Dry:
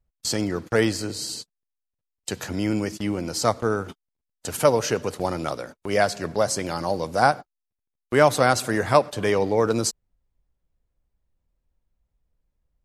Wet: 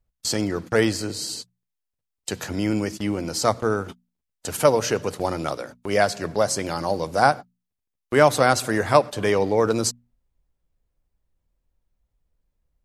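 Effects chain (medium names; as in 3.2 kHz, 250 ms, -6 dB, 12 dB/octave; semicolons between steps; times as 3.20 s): hum notches 60/120/180/240 Hz; trim +1 dB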